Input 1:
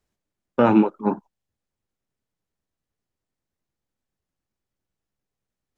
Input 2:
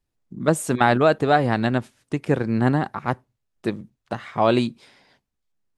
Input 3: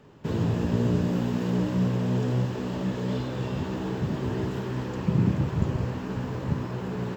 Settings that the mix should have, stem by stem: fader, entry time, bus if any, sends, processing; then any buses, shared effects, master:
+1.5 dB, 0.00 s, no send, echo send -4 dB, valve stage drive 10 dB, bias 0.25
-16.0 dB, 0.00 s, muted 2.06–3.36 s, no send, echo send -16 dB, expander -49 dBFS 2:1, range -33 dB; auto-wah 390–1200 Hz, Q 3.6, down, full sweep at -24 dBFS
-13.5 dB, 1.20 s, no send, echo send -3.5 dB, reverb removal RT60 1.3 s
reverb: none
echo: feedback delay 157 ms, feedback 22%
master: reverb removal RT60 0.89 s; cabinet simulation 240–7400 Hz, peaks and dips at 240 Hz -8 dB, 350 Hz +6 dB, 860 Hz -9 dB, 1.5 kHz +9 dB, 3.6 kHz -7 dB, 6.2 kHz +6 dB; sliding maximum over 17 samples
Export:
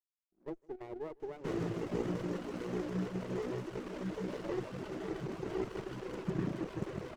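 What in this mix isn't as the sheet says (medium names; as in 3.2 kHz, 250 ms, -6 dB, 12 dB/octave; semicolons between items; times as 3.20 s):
stem 1: muted; stem 3 -13.5 dB -> -3.0 dB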